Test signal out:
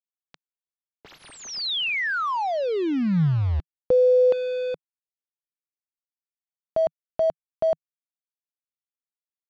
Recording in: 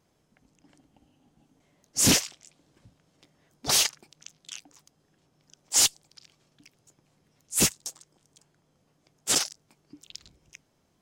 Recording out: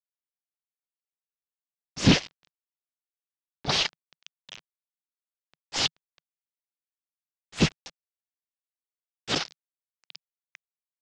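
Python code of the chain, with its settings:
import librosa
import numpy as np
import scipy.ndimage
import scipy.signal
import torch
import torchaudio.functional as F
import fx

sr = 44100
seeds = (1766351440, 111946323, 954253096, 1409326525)

y = fx.low_shelf(x, sr, hz=300.0, db=3.0)
y = np.where(np.abs(y) >= 10.0 ** (-33.5 / 20.0), y, 0.0)
y = scipy.signal.sosfilt(scipy.signal.butter(4, 4400.0, 'lowpass', fs=sr, output='sos'), y)
y = fx.peak_eq(y, sr, hz=160.0, db=4.5, octaves=0.54)
y = y * librosa.db_to_amplitude(2.0)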